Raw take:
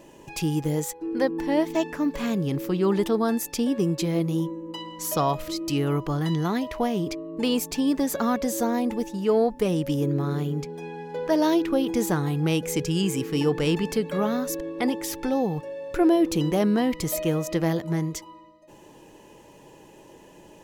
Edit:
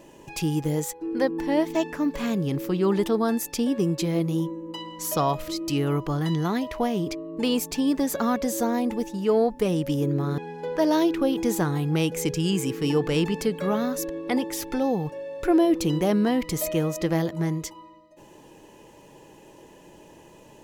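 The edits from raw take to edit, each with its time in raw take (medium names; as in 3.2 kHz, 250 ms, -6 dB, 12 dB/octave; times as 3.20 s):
10.38–10.89 s: delete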